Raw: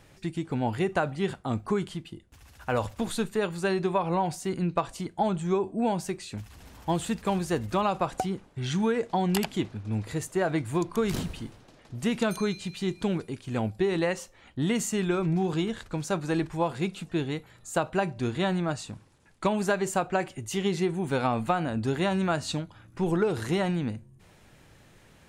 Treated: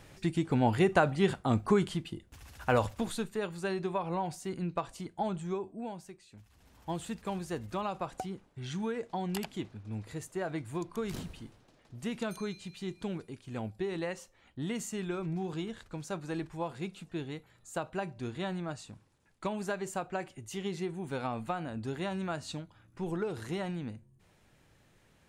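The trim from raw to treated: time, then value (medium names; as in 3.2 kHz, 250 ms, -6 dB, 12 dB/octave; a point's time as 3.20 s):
2.69 s +1.5 dB
3.26 s -7 dB
5.39 s -7 dB
6.25 s -19 dB
6.91 s -9 dB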